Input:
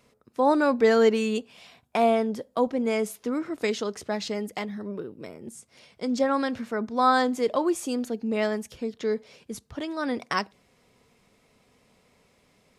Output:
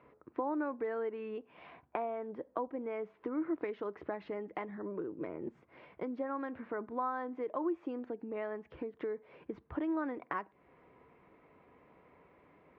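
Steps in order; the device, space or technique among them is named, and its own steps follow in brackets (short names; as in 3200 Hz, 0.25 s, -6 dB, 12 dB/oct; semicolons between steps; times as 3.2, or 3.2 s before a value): bass amplifier (compressor 5:1, threshold -38 dBFS, peak gain reduction 20 dB; speaker cabinet 60–2100 Hz, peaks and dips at 110 Hz -8 dB, 220 Hz -8 dB, 320 Hz +8 dB, 1000 Hz +5 dB); gain +1 dB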